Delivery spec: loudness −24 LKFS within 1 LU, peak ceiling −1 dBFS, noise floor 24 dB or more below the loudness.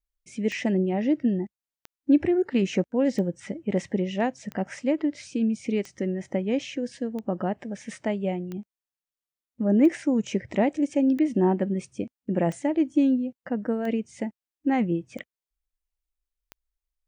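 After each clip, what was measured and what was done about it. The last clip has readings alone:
number of clicks 13; integrated loudness −26.5 LKFS; sample peak −9.5 dBFS; target loudness −24.0 LKFS
→ click removal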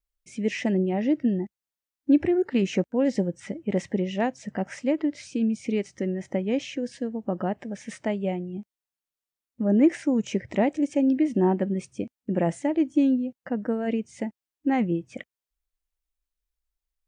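number of clicks 0; integrated loudness −26.5 LKFS; sample peak −9.5 dBFS; target loudness −24.0 LKFS
→ level +2.5 dB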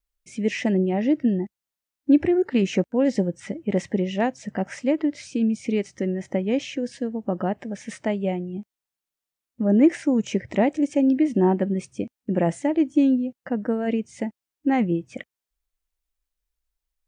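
integrated loudness −24.0 LKFS; sample peak −7.0 dBFS; background noise floor −88 dBFS

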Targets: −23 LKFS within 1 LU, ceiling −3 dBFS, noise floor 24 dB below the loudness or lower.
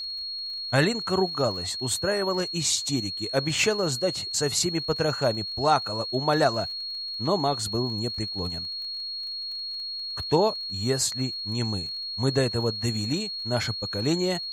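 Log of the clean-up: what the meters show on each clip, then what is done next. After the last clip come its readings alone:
crackle rate 27 per second; interfering tone 4,300 Hz; level of the tone −31 dBFS; integrated loudness −26.0 LKFS; sample peak −8.0 dBFS; target loudness −23.0 LKFS
→ click removal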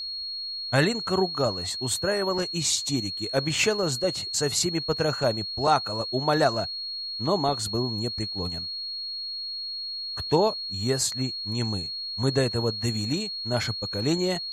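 crackle rate 0 per second; interfering tone 4,300 Hz; level of the tone −31 dBFS
→ notch filter 4,300 Hz, Q 30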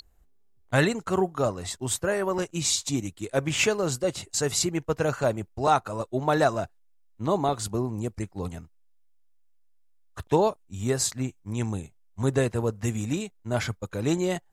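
interfering tone none found; integrated loudness −27.0 LKFS; sample peak −8.5 dBFS; target loudness −23.0 LKFS
→ level +4 dB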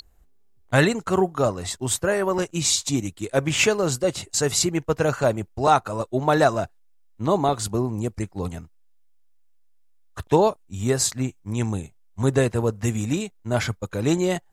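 integrated loudness −23.0 LKFS; sample peak −4.5 dBFS; background noise floor −56 dBFS

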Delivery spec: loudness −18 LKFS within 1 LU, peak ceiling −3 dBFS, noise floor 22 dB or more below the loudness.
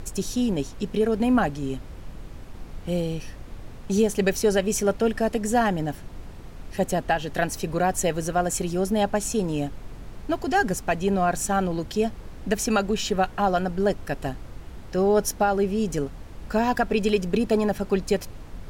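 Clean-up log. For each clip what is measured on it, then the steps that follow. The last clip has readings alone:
background noise floor −40 dBFS; target noise floor −47 dBFS; integrated loudness −25.0 LKFS; sample peak −10.0 dBFS; target loudness −18.0 LKFS
→ noise reduction from a noise print 7 dB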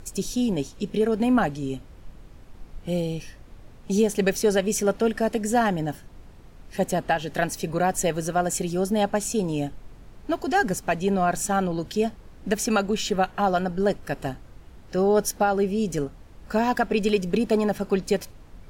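background noise floor −47 dBFS; integrated loudness −25.0 LKFS; sample peak −10.5 dBFS; target loudness −18.0 LKFS
→ level +7 dB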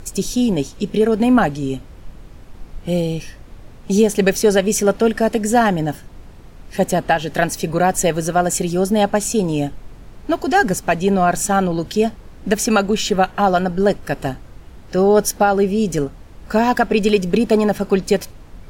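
integrated loudness −18.0 LKFS; sample peak −3.5 dBFS; background noise floor −40 dBFS

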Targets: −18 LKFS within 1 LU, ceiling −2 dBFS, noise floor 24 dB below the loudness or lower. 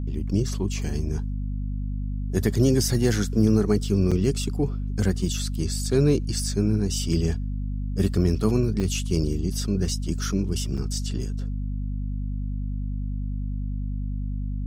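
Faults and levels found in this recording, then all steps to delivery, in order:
number of dropouts 3; longest dropout 5.7 ms; mains hum 50 Hz; hum harmonics up to 250 Hz; level of the hum −26 dBFS; integrated loudness −25.5 LKFS; sample peak −8.0 dBFS; target loudness −18.0 LKFS
→ repair the gap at 0:04.11/0:08.80/0:10.77, 5.7 ms
mains-hum notches 50/100/150/200/250 Hz
level +7.5 dB
brickwall limiter −2 dBFS

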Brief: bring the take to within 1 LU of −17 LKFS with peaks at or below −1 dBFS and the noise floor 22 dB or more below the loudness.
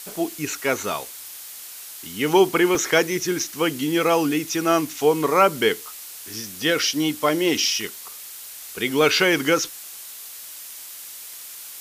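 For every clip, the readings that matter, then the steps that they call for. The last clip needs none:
number of dropouts 1; longest dropout 2.5 ms; background noise floor −39 dBFS; target noise floor −43 dBFS; integrated loudness −21.0 LKFS; sample peak −4.0 dBFS; target loudness −17.0 LKFS
→ repair the gap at 0:02.75, 2.5 ms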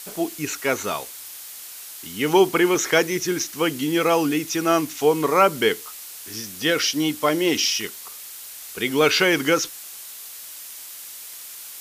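number of dropouts 0; background noise floor −39 dBFS; target noise floor −43 dBFS
→ broadband denoise 6 dB, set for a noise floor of −39 dBFS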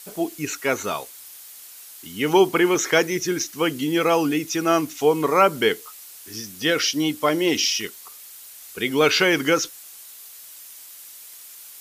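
background noise floor −43 dBFS; integrated loudness −21.0 LKFS; sample peak −4.0 dBFS; target loudness −17.0 LKFS
→ level +4 dB
brickwall limiter −1 dBFS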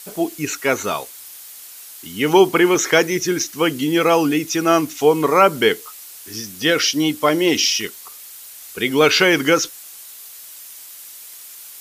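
integrated loudness −17.0 LKFS; sample peak −1.0 dBFS; background noise floor −39 dBFS

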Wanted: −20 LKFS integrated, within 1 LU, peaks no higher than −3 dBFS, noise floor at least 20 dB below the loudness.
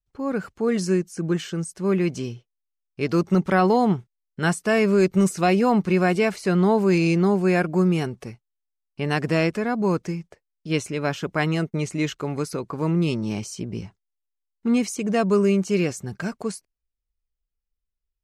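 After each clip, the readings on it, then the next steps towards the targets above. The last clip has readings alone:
integrated loudness −23.0 LKFS; sample peak −8.5 dBFS; target loudness −20.0 LKFS
→ level +3 dB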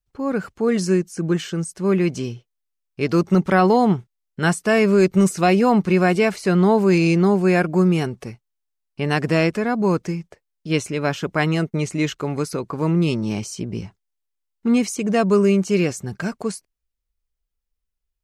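integrated loudness −20.0 LKFS; sample peak −5.5 dBFS; background noise floor −78 dBFS

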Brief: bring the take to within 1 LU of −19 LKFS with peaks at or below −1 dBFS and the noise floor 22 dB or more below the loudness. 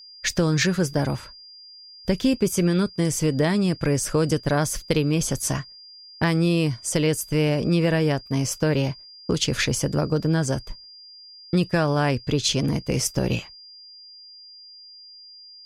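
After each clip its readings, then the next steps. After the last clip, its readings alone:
interfering tone 4,800 Hz; level of the tone −43 dBFS; integrated loudness −23.0 LKFS; sample peak −7.0 dBFS; target loudness −19.0 LKFS
→ notch filter 4,800 Hz, Q 30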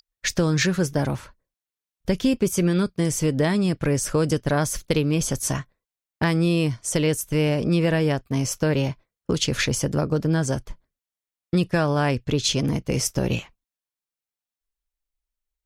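interfering tone none found; integrated loudness −23.0 LKFS; sample peak −7.0 dBFS; target loudness −19.0 LKFS
→ level +4 dB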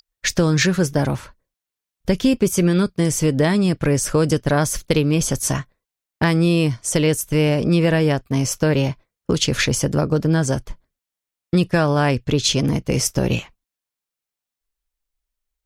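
integrated loudness −19.0 LKFS; sample peak −3.0 dBFS; background noise floor −87 dBFS

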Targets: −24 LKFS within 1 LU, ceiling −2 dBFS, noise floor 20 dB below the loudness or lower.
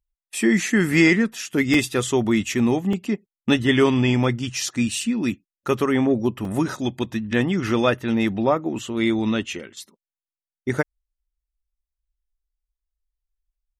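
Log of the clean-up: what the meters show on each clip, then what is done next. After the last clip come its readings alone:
number of dropouts 3; longest dropout 2.8 ms; integrated loudness −21.5 LKFS; sample peak −4.0 dBFS; target loudness −24.0 LKFS
→ repair the gap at 0:01.74/0:02.93/0:06.45, 2.8 ms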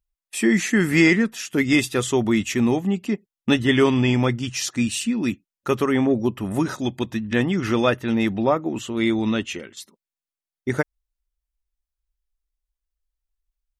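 number of dropouts 0; integrated loudness −21.5 LKFS; sample peak −4.0 dBFS; target loudness −24.0 LKFS
→ level −2.5 dB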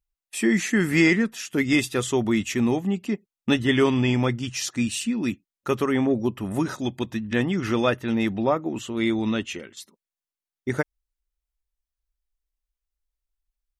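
integrated loudness −24.0 LKFS; sample peak −6.5 dBFS; background noise floor −92 dBFS

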